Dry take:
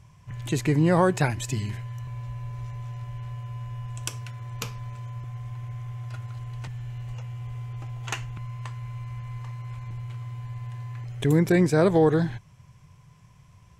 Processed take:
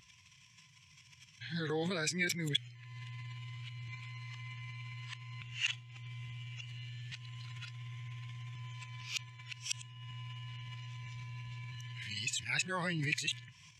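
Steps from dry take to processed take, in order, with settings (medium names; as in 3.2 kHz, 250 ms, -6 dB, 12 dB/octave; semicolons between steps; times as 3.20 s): reverse the whole clip; amplifier tone stack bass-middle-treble 5-5-5; transient shaper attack -2 dB, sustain +10 dB; frequency weighting D; compression 2:1, threshold -57 dBFS, peak gain reduction 18 dB; spectral contrast expander 1.5:1; trim +11 dB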